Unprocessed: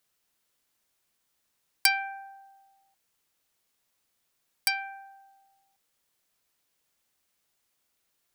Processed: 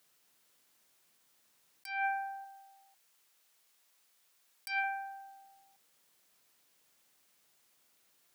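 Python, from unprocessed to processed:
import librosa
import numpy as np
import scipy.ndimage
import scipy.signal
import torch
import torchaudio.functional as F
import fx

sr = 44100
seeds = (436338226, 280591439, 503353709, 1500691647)

y = fx.low_shelf(x, sr, hz=410.0, db=-11.0, at=(2.44, 4.84))
y = fx.over_compress(y, sr, threshold_db=-36.0, ratio=-1.0)
y = scipy.signal.sosfilt(scipy.signal.butter(2, 120.0, 'highpass', fs=sr, output='sos'), y)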